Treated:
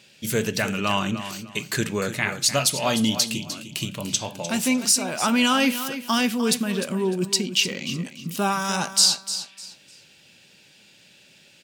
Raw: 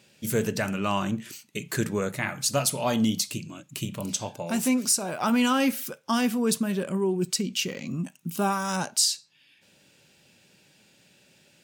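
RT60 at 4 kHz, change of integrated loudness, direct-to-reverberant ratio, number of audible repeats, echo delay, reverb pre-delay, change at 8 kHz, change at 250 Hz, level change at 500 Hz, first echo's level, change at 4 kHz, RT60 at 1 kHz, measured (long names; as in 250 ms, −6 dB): no reverb audible, +4.0 dB, no reverb audible, 3, 302 ms, no reverb audible, +4.5 dB, +1.5 dB, +2.0 dB, −11.5 dB, +8.0 dB, no reverb audible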